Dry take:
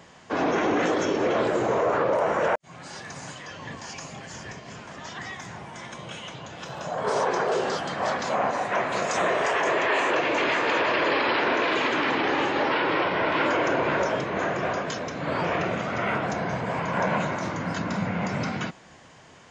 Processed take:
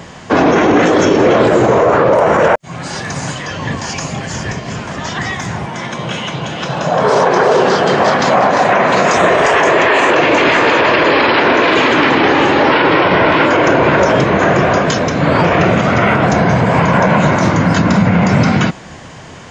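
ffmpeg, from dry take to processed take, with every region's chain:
-filter_complex "[0:a]asettb=1/sr,asplit=3[a][b][c];[a]atrim=end=5.664[d];[b]atrim=start=5.66:end=9.17,asetpts=PTS-STARTPTS,afade=t=in:d=0.004:c=qsin,afade=t=out:st=3.506:d=0.004:c=qsin,highpass=120,lowpass=6.4k,aecho=1:1:347:0.473,atrim=end_sample=154791[e];[c]atrim=start=9.166[f];[d][e]acrossfade=d=0.004:c1=hsin:c2=qsin[g];[g][f]acrossfade=d=0.004:c1=qsin:c2=hsin,lowshelf=f=230:g=7,alimiter=level_in=16.5dB:limit=-1dB:release=50:level=0:latency=1,volume=-1dB"

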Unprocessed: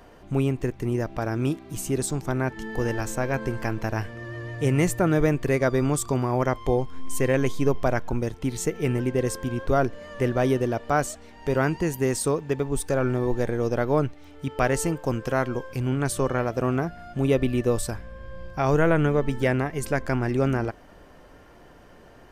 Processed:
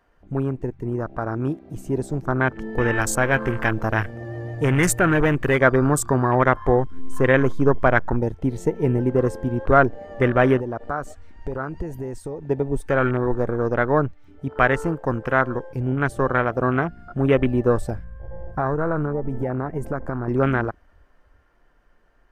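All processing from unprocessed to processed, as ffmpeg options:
-filter_complex "[0:a]asettb=1/sr,asplit=3[a][b][c];[a]atrim=end=2.954[d];[b]atrim=start=2.95:end=5.62,asetpts=PTS-STARTPTS,afade=t=in:d=0.004:c=qsin,afade=t=out:st=2.666:d=0.004:c=qsin,aemphasis=mode=production:type=cd,asoftclip=type=hard:threshold=-18.5dB[e];[c]atrim=start=5.616[f];[d][e]acrossfade=d=0.004:c1=hsin:c2=qsin[g];[g][f]acrossfade=d=0.004:c1=qsin:c2=hsin,asettb=1/sr,asplit=3[h][i][j];[h]atrim=end=10.584[k];[i]atrim=start=10.58:end=12.44,asetpts=PTS-STARTPTS,afade=t=in:d=0.004:c=qsin,afade=t=out:st=1.856:d=0.004:c=qsin,acompressor=threshold=-30dB:ratio=4:attack=3.2:release=140:knee=1:detection=peak,asubboost=boost=5.5:cutoff=84[l];[j]atrim=start=12.436[m];[k][l]acrossfade=d=0.004:c1=hsin:c2=qsin[n];[n][m]acrossfade=d=0.004:c1=qsin:c2=hsin,asettb=1/sr,asplit=3[o][p][q];[o]atrim=end=18.044[r];[p]atrim=start=18.04:end=20.28,asetpts=PTS-STARTPTS,afade=t=in:d=0.004:c=qsin,afade=t=out:st=2.236:d=0.004:c=qsin,equalizer=f=4.1k:t=o:w=1.5:g=-10,acompressor=threshold=-24dB:ratio=16:attack=3.2:release=140:knee=1:detection=peak[s];[q]atrim=start=20.276[t];[r][s]acrossfade=d=0.004:c1=hsin:c2=qsin[u];[u][t]acrossfade=d=0.004:c1=qsin:c2=hsin,afwtdn=0.02,equalizer=f=1.5k:w=1.1:g=8.5,dynaudnorm=f=400:g=13:m=11.5dB,volume=-1dB"

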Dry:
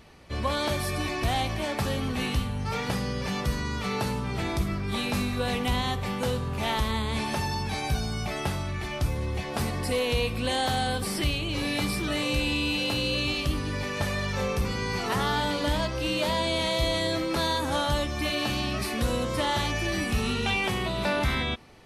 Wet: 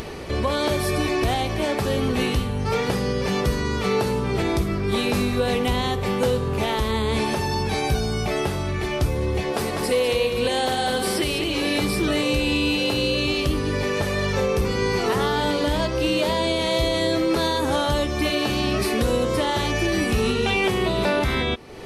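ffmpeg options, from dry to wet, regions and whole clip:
-filter_complex "[0:a]asettb=1/sr,asplit=3[a][b][c];[a]atrim=end=9.524[d];[b]atrim=start=9.52:end=11.78,asetpts=PTS-STARTPTS,afade=t=in:d=0.004:c=qsin,afade=t=out:st=2.256:d=0.004:c=qsin,lowshelf=f=180:g=-10,aecho=1:1:200:0.473,atrim=end_sample=99666[e];[c]atrim=start=11.776[f];[d][e]acrossfade=d=0.004:c1=hsin:c2=qsin[g];[g][f]acrossfade=d=0.004:c1=qsin:c2=hsin,equalizer=f=410:w=2:g=9,alimiter=limit=-17dB:level=0:latency=1:release=242,acompressor=mode=upward:threshold=-28dB:ratio=2.5,volume=5dB"

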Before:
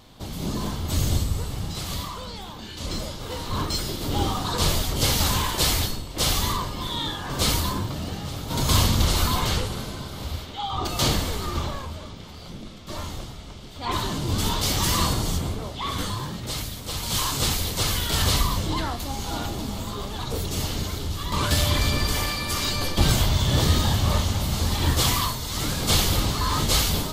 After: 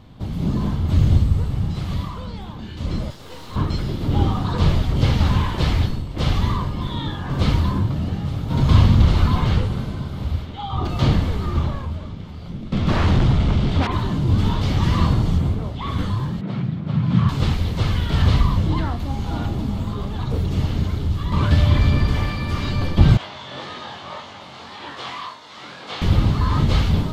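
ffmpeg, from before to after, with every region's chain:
-filter_complex "[0:a]asettb=1/sr,asplit=3[a][b][c];[a]atrim=end=3.104[d];[b]atrim=start=3.1:end=3.56,asetpts=PTS-STARTPTS,afade=t=in:d=0.004:c=qsin,afade=t=out:st=0.456:d=0.004:c=qsin,bass=f=250:g=-12,treble=f=4k:g=13,aeval=exprs='(tanh(28.2*val(0)+0.8)-tanh(0.8))/28.2':c=same[e];[c]atrim=start=3.556[f];[d][e]acrossfade=d=0.004:c1=hsin:c2=qsin[g];[g][f]acrossfade=d=0.004:c1=qsin:c2=hsin,asettb=1/sr,asplit=3[h][i][j];[h]atrim=end=12.724[k];[i]atrim=start=12.72:end=13.87,asetpts=PTS-STARTPTS,afade=t=in:d=0.004:c=qsin,afade=t=out:st=1.146:d=0.004:c=qsin,lowpass=10k,aeval=exprs='0.126*sin(PI/2*5.01*val(0)/0.126)':c=same[l];[j]atrim=start=13.866[m];[k][l]acrossfade=d=0.004:c1=hsin:c2=qsin[n];[n][m]acrossfade=d=0.004:c1=qsin:c2=hsin,asettb=1/sr,asplit=3[o][p][q];[o]atrim=end=16.414[r];[p]atrim=start=16.41:end=17.29,asetpts=PTS-STARTPTS,afade=t=in:d=0.004:c=qsin,afade=t=out:st=0.876:d=0.004:c=qsin,asubboost=boost=9:cutoff=160,afreqshift=78,highpass=120,lowpass=2.4k[s];[q]atrim=start=17.286[t];[r][s]acrossfade=d=0.004:c1=hsin:c2=qsin[u];[u][t]acrossfade=d=0.004:c1=qsin:c2=hsin,asettb=1/sr,asplit=3[v][w][x];[v]atrim=end=23.174[y];[w]atrim=start=23.17:end=26.02,asetpts=PTS-STARTPTS,afade=t=in:d=0.004:c=qsin,afade=t=out:st=2.846:d=0.004:c=qsin,highpass=630,lowpass=5.2k,flanger=delay=20:depth=3.1:speed=1.8[z];[x]atrim=start=26.016[aa];[y][z]acrossfade=d=0.004:c1=hsin:c2=qsin[ab];[ab][aa]acrossfade=d=0.004:c1=qsin:c2=hsin,bass=f=250:g=13,treble=f=4k:g=-13,acrossover=split=5700[ac][ad];[ad]acompressor=threshold=-52dB:ratio=4:attack=1:release=60[ae];[ac][ae]amix=inputs=2:normalize=0,lowshelf=f=74:g=-9"

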